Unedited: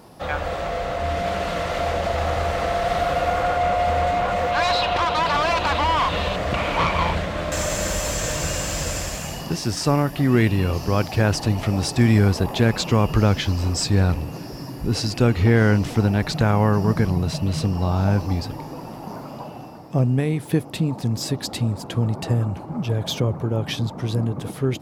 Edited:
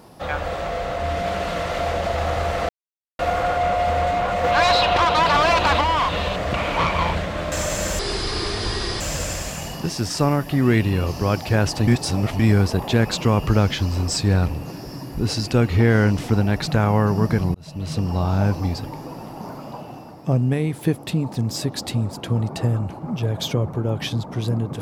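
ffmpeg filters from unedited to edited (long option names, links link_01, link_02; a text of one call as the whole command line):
ffmpeg -i in.wav -filter_complex "[0:a]asplit=10[link_01][link_02][link_03][link_04][link_05][link_06][link_07][link_08][link_09][link_10];[link_01]atrim=end=2.69,asetpts=PTS-STARTPTS,afade=type=out:start_time=2.686:duration=0.004:curve=hsin[link_11];[link_02]atrim=start=2.69:end=3.19,asetpts=PTS-STARTPTS,volume=0[link_12];[link_03]atrim=start=3.19:end=4.442,asetpts=PTS-STARTPTS,afade=type=in:duration=0.004:curve=hsin[link_13];[link_04]atrim=start=4.438:end=5.812,asetpts=PTS-STARTPTS,volume=3.5dB[link_14];[link_05]atrim=start=5.808:end=7.994[link_15];[link_06]atrim=start=7.99:end=8.67,asetpts=PTS-STARTPTS,asetrate=29547,aresample=44100,atrim=end_sample=44758,asetpts=PTS-STARTPTS[link_16];[link_07]atrim=start=8.666:end=11.542[link_17];[link_08]atrim=start=11.538:end=12.062,asetpts=PTS-STARTPTS,areverse[link_18];[link_09]atrim=start=12.058:end=17.21,asetpts=PTS-STARTPTS,afade=type=out:start_time=5.148:duration=0.004:curve=hsin[link_19];[link_10]atrim=start=17.21,asetpts=PTS-STARTPTS,afade=type=in:duration=0.53[link_20];[link_11][link_12][link_13]concat=n=3:v=0:a=1[link_21];[link_21][link_14]acrossfade=duration=0.004:curve1=hsin:curve2=hsin[link_22];[link_22][link_15]acrossfade=duration=0.004:curve1=hsin:curve2=hsin[link_23];[link_23][link_16]acrossfade=duration=0.004:curve1=hsin:curve2=hsin[link_24];[link_24][link_17]acrossfade=duration=0.004:curve1=hsin:curve2=hsin[link_25];[link_25][link_18]acrossfade=duration=0.004:curve1=hsin:curve2=hsin[link_26];[link_19][link_20]concat=n=2:v=0:a=1[link_27];[link_26][link_27]acrossfade=duration=0.004:curve1=hsin:curve2=hsin" out.wav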